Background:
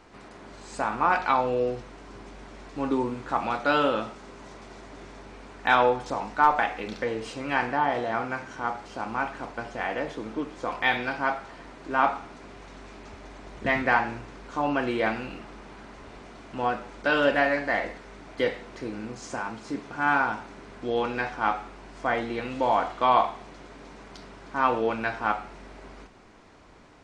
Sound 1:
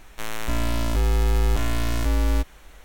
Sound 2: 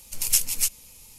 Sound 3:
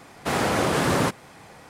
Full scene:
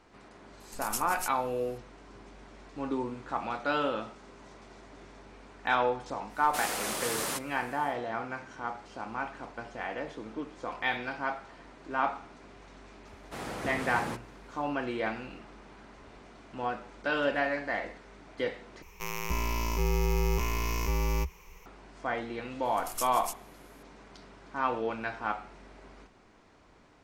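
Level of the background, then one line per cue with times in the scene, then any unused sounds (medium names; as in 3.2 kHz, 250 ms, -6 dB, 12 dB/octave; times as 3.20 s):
background -6.5 dB
0.60 s: add 2 -14.5 dB
6.28 s: add 3 -12 dB, fades 0.10 s + RIAA curve recording
13.06 s: add 3 -15.5 dB
18.82 s: replace with 1 -6 dB + rippled EQ curve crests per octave 0.79, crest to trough 15 dB
22.65 s: add 2 -16 dB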